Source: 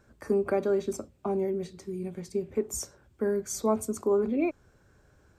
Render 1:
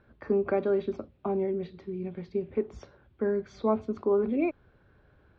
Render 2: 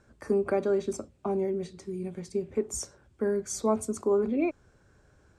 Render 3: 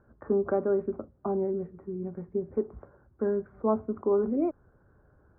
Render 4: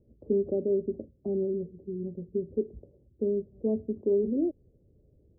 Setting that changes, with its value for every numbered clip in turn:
steep low-pass, frequency: 3.9 kHz, 11 kHz, 1.5 kHz, 530 Hz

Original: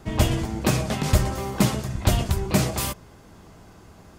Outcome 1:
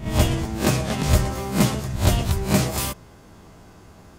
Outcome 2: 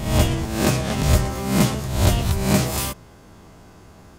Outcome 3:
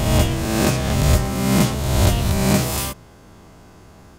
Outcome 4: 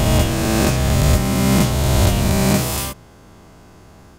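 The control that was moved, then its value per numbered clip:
reverse spectral sustain, rising 60 dB in: 0.32 s, 0.67 s, 1.48 s, 3.18 s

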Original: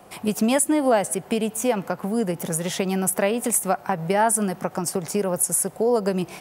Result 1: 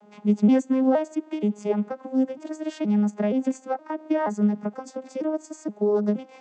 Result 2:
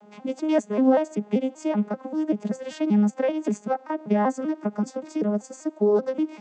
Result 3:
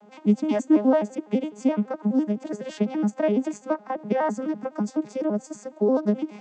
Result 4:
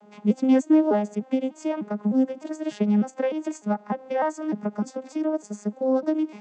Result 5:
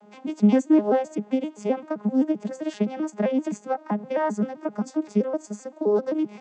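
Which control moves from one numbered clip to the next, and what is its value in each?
vocoder on a broken chord, a note every: 473 ms, 193 ms, 84 ms, 301 ms, 130 ms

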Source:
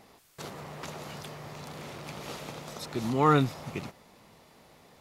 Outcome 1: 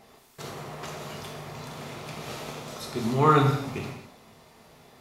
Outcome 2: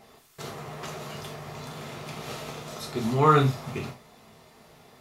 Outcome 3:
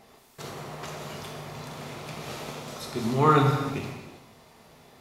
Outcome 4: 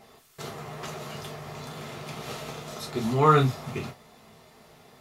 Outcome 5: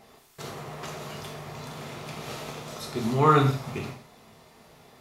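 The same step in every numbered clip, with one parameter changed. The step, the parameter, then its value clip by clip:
gated-style reverb, gate: 300 ms, 120 ms, 440 ms, 80 ms, 200 ms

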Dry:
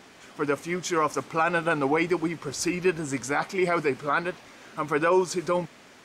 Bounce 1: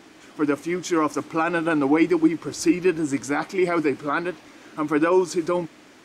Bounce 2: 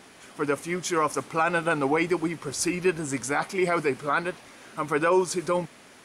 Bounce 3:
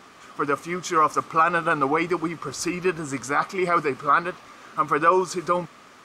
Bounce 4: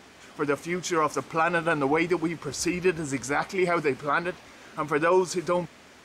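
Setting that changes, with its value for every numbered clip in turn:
peaking EQ, frequency: 310 Hz, 10 kHz, 1.2 kHz, 71 Hz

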